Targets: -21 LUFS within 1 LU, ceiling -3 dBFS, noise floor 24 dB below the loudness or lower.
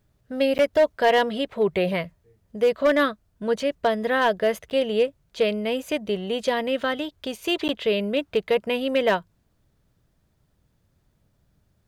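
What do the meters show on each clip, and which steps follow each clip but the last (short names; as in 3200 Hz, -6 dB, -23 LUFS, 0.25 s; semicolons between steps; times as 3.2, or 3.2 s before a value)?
clipped 0.6%; flat tops at -13.0 dBFS; dropouts 3; longest dropout 9.8 ms; loudness -24.0 LUFS; peak -13.0 dBFS; loudness target -21.0 LUFS
-> clip repair -13 dBFS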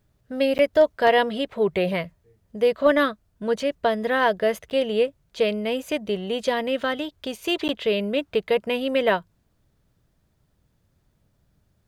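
clipped 0.0%; dropouts 3; longest dropout 9.8 ms
-> interpolate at 0.58/4.7/7.68, 9.8 ms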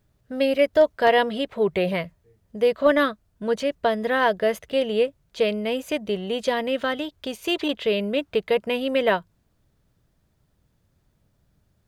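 dropouts 0; loudness -23.5 LUFS; peak -6.5 dBFS; loudness target -21.0 LUFS
-> gain +2.5 dB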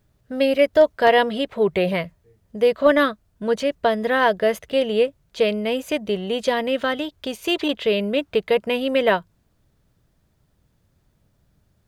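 loudness -21.0 LUFS; peak -4.0 dBFS; noise floor -65 dBFS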